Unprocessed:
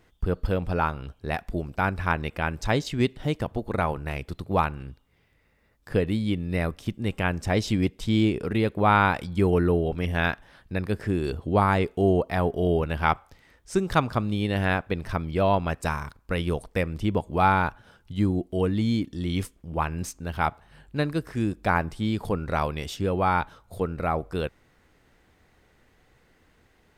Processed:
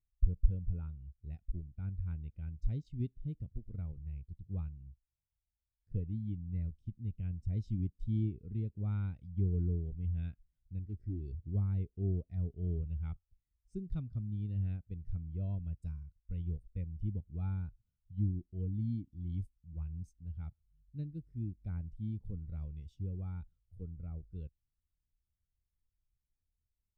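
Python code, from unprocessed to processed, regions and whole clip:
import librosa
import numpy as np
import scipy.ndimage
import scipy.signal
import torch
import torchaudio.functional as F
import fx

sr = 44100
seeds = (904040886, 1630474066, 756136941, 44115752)

y = fx.chain(x, sr, fx.peak_eq(hz=2700.0, db=-6.5, octaves=0.23),
    fx.comb(ms=3.1, depth=0.38),
    fx.doppler_dist(depth_ms=0.43), at=(10.79, 11.21))
y = fx.tone_stack(y, sr, knobs='10-0-1')
y = fx.notch(y, sr, hz=1700.0, q=8.9)
y = fx.spectral_expand(y, sr, expansion=1.5)
y = F.gain(torch.from_numpy(y), 7.5).numpy()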